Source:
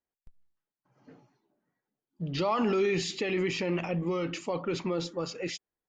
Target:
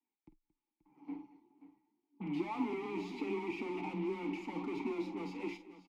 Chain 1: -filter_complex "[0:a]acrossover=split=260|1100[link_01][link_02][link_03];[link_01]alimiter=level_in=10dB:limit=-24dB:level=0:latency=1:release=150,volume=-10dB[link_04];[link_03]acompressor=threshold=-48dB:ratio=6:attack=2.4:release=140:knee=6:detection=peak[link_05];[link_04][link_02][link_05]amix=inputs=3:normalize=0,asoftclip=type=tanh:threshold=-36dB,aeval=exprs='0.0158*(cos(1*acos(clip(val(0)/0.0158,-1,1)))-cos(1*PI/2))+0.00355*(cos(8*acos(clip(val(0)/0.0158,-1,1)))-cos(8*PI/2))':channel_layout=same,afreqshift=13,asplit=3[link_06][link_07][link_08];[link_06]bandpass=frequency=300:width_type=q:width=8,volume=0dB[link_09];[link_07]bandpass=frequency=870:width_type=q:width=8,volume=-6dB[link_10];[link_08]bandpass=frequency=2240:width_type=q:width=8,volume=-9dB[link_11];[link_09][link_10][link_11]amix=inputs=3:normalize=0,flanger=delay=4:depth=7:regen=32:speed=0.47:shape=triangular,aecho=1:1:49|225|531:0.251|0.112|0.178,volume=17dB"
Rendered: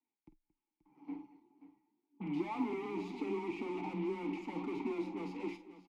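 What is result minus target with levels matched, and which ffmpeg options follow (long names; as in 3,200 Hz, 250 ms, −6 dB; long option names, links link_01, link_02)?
downward compressor: peak gain reduction +6 dB
-filter_complex "[0:a]acrossover=split=260|1100[link_01][link_02][link_03];[link_01]alimiter=level_in=10dB:limit=-24dB:level=0:latency=1:release=150,volume=-10dB[link_04];[link_03]acompressor=threshold=-41dB:ratio=6:attack=2.4:release=140:knee=6:detection=peak[link_05];[link_04][link_02][link_05]amix=inputs=3:normalize=0,asoftclip=type=tanh:threshold=-36dB,aeval=exprs='0.0158*(cos(1*acos(clip(val(0)/0.0158,-1,1)))-cos(1*PI/2))+0.00355*(cos(8*acos(clip(val(0)/0.0158,-1,1)))-cos(8*PI/2))':channel_layout=same,afreqshift=13,asplit=3[link_06][link_07][link_08];[link_06]bandpass=frequency=300:width_type=q:width=8,volume=0dB[link_09];[link_07]bandpass=frequency=870:width_type=q:width=8,volume=-6dB[link_10];[link_08]bandpass=frequency=2240:width_type=q:width=8,volume=-9dB[link_11];[link_09][link_10][link_11]amix=inputs=3:normalize=0,flanger=delay=4:depth=7:regen=32:speed=0.47:shape=triangular,aecho=1:1:49|225|531:0.251|0.112|0.178,volume=17dB"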